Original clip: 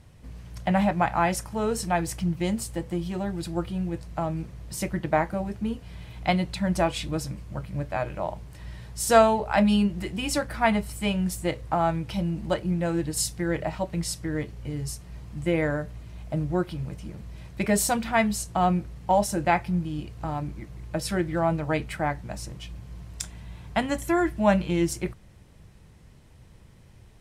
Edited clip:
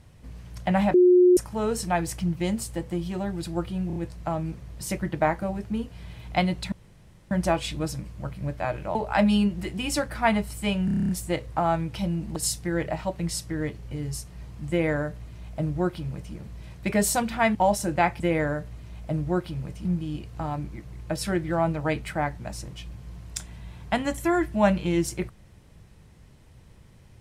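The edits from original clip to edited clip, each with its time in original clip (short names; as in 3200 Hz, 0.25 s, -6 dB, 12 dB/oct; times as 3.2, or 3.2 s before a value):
0.94–1.37 bleep 360 Hz -12.5 dBFS
3.87 stutter 0.03 s, 4 plays
6.63 insert room tone 0.59 s
8.27–9.34 cut
11.24 stutter 0.03 s, 9 plays
12.51–13.1 cut
15.43–17.08 copy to 19.69
18.29–19.04 cut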